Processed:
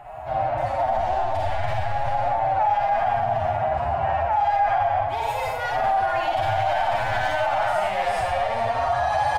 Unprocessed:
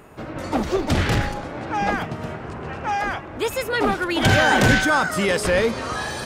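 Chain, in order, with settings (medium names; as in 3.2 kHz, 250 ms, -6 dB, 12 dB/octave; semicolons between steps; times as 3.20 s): one-sided wavefolder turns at -19 dBFS; Schroeder reverb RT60 0.7 s, combs from 27 ms, DRR -4.5 dB; time stretch by phase-locked vocoder 1.5×; reverse; compression 6:1, threshold -22 dBFS, peak gain reduction 12.5 dB; reverse; FFT filter 120 Hz 0 dB, 190 Hz -20 dB, 460 Hz -20 dB, 710 Hz +12 dB, 1.2 kHz -10 dB, 1.7 kHz -8 dB, 3 kHz -11 dB, 6.4 kHz -20 dB; peak limiter -20.5 dBFS, peak gain reduction 8 dB; bass shelf 350 Hz -5 dB; on a send: delay 420 ms -15 dB; on the sum: trim +7.5 dB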